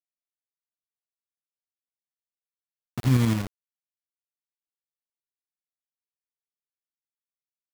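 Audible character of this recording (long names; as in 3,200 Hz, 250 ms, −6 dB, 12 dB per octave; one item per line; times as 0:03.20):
a quantiser's noise floor 6 bits, dither none
tremolo saw up 12 Hz, depth 45%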